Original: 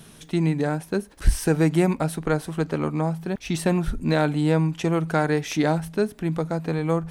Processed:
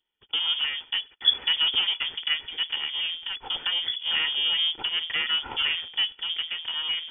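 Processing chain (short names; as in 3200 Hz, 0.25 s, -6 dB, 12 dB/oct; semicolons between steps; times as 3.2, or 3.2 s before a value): minimum comb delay 2 ms; gate -43 dBFS, range -32 dB; low shelf 84 Hz -7 dB; inverted band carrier 3400 Hz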